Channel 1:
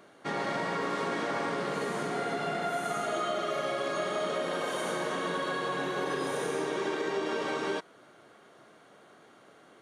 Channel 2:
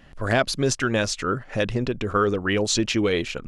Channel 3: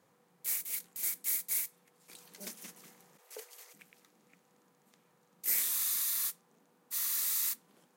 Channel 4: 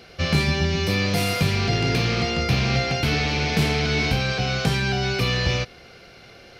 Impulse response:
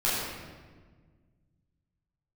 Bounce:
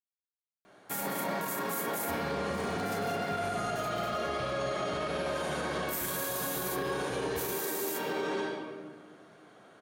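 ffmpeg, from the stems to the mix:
-filter_complex "[0:a]adelay=650,volume=-7dB,asplit=2[a][b];[b]volume=-7dB[c];[2:a]aeval=exprs='val(0)*gte(abs(val(0)),0.00178)':c=same,adelay=450,volume=-1.5dB,asplit=2[d][e];[e]volume=-21dB[f];[3:a]acompressor=threshold=-40dB:ratio=1.5,lowpass=7.8k,adelay=1900,volume=-13dB[g];[4:a]atrim=start_sample=2205[h];[c][f]amix=inputs=2:normalize=0[i];[i][h]afir=irnorm=-1:irlink=0[j];[a][d][g][j]amix=inputs=4:normalize=0,alimiter=level_in=0.5dB:limit=-24dB:level=0:latency=1:release=31,volume=-0.5dB"

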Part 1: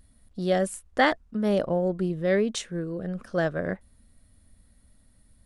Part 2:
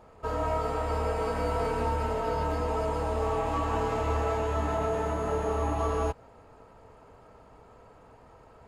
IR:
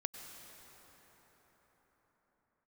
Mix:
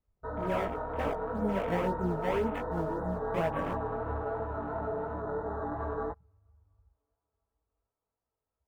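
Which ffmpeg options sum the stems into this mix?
-filter_complex "[0:a]agate=range=-33dB:threshold=-52dB:ratio=3:detection=peak,alimiter=limit=-17dB:level=0:latency=1:release=35,acrusher=samples=20:mix=1:aa=0.000001:lfo=1:lforange=32:lforate=1.9,volume=-3.5dB[a];[1:a]afwtdn=0.0141,volume=-3dB,asplit=2[b][c];[c]volume=-20.5dB[d];[2:a]atrim=start_sample=2205[e];[d][e]afir=irnorm=-1:irlink=0[f];[a][b][f]amix=inputs=3:normalize=0,afwtdn=0.0141,flanger=delay=17:depth=4:speed=2.9"

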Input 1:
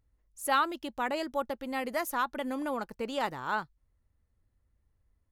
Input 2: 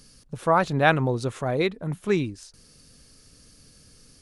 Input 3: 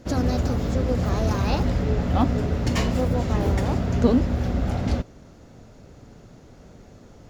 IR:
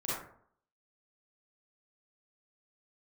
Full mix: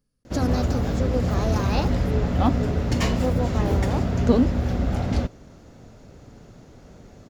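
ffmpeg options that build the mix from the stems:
-filter_complex "[0:a]volume=-18.5dB[a];[1:a]equalizer=f=6k:w=0.34:g=-14,volume=-19dB[b];[2:a]adelay=250,volume=0.5dB[c];[a][b][c]amix=inputs=3:normalize=0"

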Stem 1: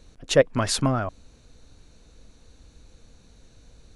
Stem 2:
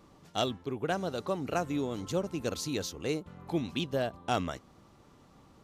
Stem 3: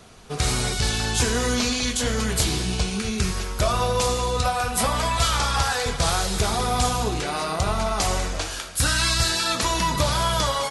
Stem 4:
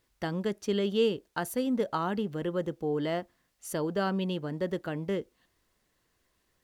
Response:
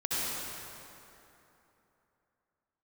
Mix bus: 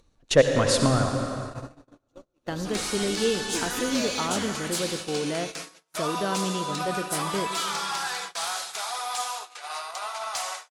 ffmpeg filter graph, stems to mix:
-filter_complex "[0:a]volume=-2dB,asplit=3[a][b][c];[b]volume=-10dB[d];[1:a]equalizer=f=180:t=o:w=0.3:g=-8.5,aecho=1:1:3.5:0.47,volume=-5dB,asplit=2[e][f];[f]volume=-17dB[g];[2:a]highpass=f=720:w=0.5412,highpass=f=720:w=1.3066,asoftclip=type=tanh:threshold=-16.5dB,adelay=2350,volume=-5.5dB,asplit=2[h][i];[i]volume=-17dB[j];[3:a]adelay=2250,volume=-0.5dB,asplit=2[k][l];[l]volume=-17dB[m];[c]apad=whole_len=248485[n];[e][n]sidechaincompress=threshold=-48dB:ratio=4:attack=32:release=984[o];[4:a]atrim=start_sample=2205[p];[d][g][j][m]amix=inputs=4:normalize=0[q];[q][p]afir=irnorm=-1:irlink=0[r];[a][o][h][k][r]amix=inputs=5:normalize=0,agate=range=-43dB:threshold=-33dB:ratio=16:detection=peak,acompressor=mode=upward:threshold=-40dB:ratio=2.5"

